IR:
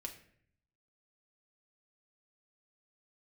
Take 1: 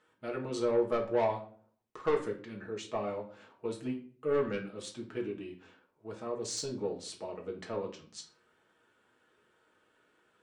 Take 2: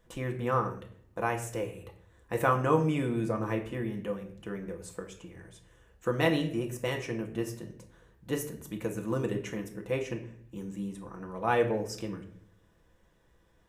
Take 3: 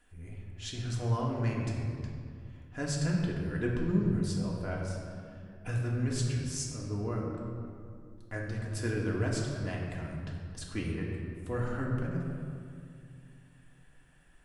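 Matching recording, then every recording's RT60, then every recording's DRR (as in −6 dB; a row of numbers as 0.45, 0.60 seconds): 2; 0.45, 0.60, 2.3 seconds; −1.0, 2.0, −3.0 decibels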